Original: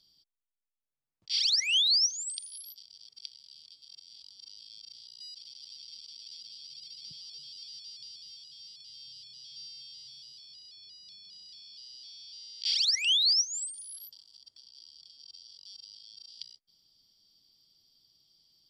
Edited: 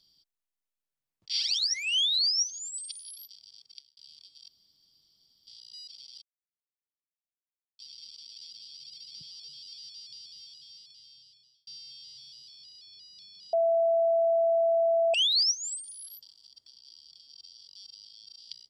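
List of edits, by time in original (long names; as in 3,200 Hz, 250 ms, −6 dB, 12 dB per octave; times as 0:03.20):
0:01.33–0:02.39: time-stretch 1.5×
0:02.91–0:03.44: fade out equal-power
0:03.95–0:04.94: fill with room tone
0:05.69: splice in silence 1.57 s
0:08.45–0:09.57: fade out
0:11.43–0:13.04: beep over 666 Hz −21 dBFS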